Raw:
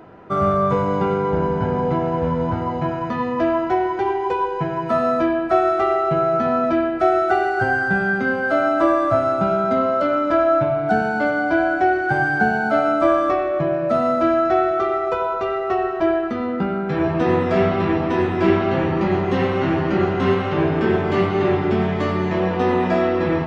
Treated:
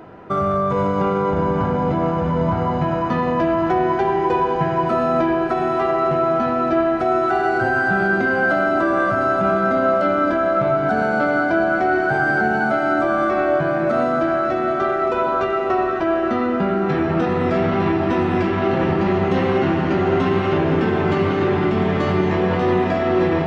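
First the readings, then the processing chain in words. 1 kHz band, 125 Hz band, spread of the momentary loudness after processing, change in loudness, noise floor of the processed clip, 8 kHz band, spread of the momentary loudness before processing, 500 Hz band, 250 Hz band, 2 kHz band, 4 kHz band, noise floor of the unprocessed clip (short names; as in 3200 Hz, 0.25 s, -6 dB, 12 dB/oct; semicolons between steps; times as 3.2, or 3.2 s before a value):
+0.5 dB, +1.5 dB, 2 LU, +0.5 dB, -21 dBFS, n/a, 5 LU, 0.0 dB, +1.0 dB, +1.5 dB, +1.0 dB, -24 dBFS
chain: limiter -14.5 dBFS, peak gain reduction 9.5 dB; on a send: diffused feedback echo 0.566 s, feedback 73%, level -8.5 dB; on the sum: gain +3 dB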